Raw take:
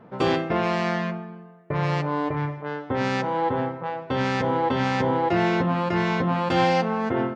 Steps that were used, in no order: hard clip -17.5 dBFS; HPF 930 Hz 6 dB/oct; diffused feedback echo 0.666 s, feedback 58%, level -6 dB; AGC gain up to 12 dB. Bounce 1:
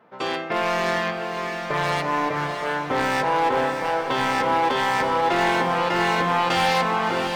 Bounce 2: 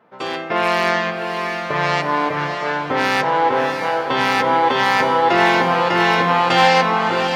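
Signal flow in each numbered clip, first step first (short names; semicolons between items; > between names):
AGC > HPF > hard clip > diffused feedback echo; HPF > hard clip > AGC > diffused feedback echo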